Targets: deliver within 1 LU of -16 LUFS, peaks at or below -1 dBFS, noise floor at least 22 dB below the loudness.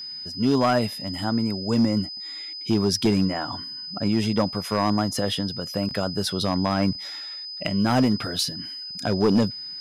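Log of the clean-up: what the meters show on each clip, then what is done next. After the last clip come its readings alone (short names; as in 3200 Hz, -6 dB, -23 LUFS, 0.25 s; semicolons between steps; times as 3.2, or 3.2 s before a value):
clipped 0.7%; flat tops at -13.5 dBFS; steady tone 5000 Hz; tone level -33 dBFS; loudness -24.5 LUFS; peak -13.5 dBFS; loudness target -16.0 LUFS
-> clip repair -13.5 dBFS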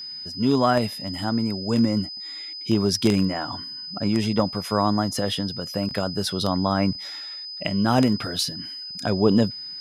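clipped 0.0%; steady tone 5000 Hz; tone level -33 dBFS
-> notch 5000 Hz, Q 30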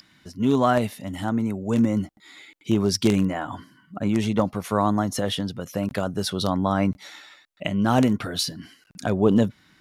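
steady tone none; loudness -24.0 LUFS; peak -5.0 dBFS; loudness target -16.0 LUFS
-> gain +8 dB; limiter -1 dBFS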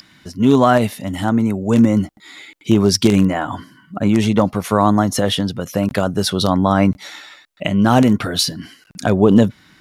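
loudness -16.5 LUFS; peak -1.0 dBFS; noise floor -51 dBFS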